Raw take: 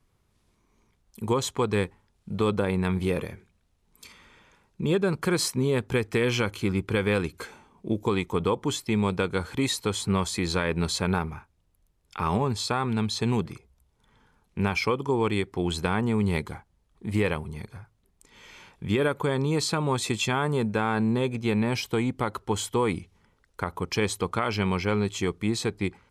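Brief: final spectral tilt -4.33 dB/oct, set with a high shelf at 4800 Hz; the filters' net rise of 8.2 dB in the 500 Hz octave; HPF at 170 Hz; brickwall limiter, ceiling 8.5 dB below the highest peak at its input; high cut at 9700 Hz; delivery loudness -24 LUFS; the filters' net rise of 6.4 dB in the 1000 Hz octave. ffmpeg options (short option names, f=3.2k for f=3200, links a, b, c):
-af "highpass=170,lowpass=9.7k,equalizer=f=500:t=o:g=9,equalizer=f=1k:t=o:g=5,highshelf=f=4.8k:g=5,volume=1dB,alimiter=limit=-11.5dB:level=0:latency=1"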